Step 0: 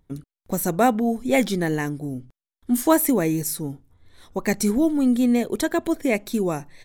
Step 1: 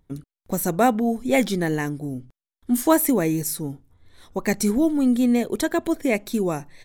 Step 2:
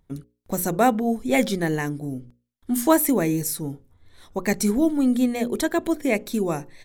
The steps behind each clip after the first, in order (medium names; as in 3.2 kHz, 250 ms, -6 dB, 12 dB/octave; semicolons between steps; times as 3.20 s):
no audible change
hum notches 60/120/180/240/300/360/420/480/540 Hz